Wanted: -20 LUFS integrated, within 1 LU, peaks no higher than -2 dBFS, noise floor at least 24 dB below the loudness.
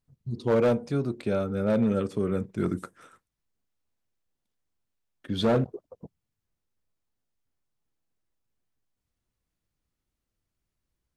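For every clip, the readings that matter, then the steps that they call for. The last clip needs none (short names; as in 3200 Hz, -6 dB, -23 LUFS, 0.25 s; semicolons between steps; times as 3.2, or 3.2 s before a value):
clipped 0.6%; flat tops at -17.5 dBFS; loudness -27.5 LUFS; peak -17.5 dBFS; loudness target -20.0 LUFS
-> clip repair -17.5 dBFS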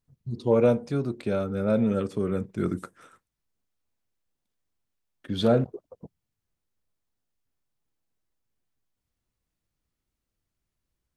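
clipped 0.0%; loudness -26.0 LUFS; peak -10.0 dBFS; loudness target -20.0 LUFS
-> gain +6 dB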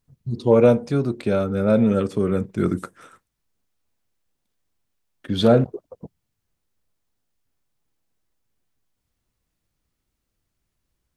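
loudness -20.0 LUFS; peak -4.0 dBFS; noise floor -78 dBFS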